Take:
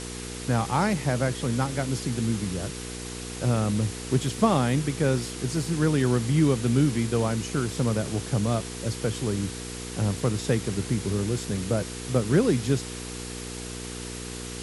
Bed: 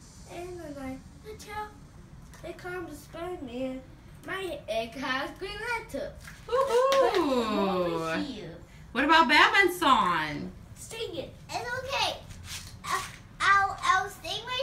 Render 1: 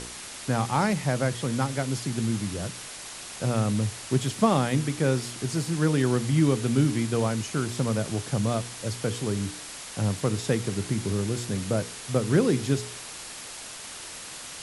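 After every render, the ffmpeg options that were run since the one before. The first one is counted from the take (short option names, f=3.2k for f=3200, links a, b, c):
-af "bandreject=f=60:t=h:w=4,bandreject=f=120:t=h:w=4,bandreject=f=180:t=h:w=4,bandreject=f=240:t=h:w=4,bandreject=f=300:t=h:w=4,bandreject=f=360:t=h:w=4,bandreject=f=420:t=h:w=4,bandreject=f=480:t=h:w=4"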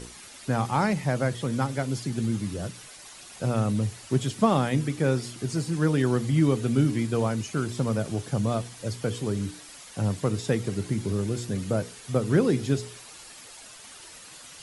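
-af "afftdn=nr=9:nf=-40"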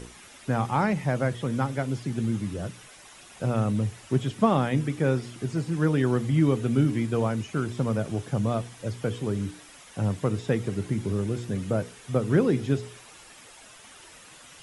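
-filter_complex "[0:a]acrossover=split=3800[a][b];[b]acompressor=threshold=-49dB:ratio=4:attack=1:release=60[c];[a][c]amix=inputs=2:normalize=0,equalizer=f=4.4k:t=o:w=0.26:g=-5.5"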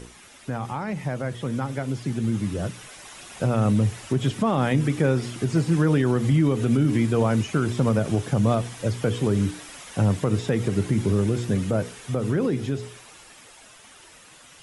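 -af "alimiter=limit=-19.5dB:level=0:latency=1:release=88,dynaudnorm=f=240:g=21:m=7.5dB"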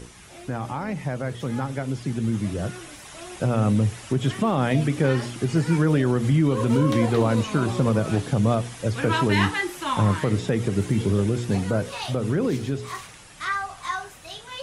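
-filter_complex "[1:a]volume=-5dB[a];[0:a][a]amix=inputs=2:normalize=0"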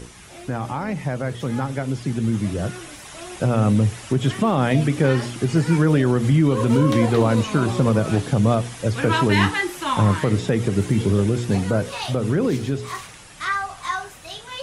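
-af "volume=3dB"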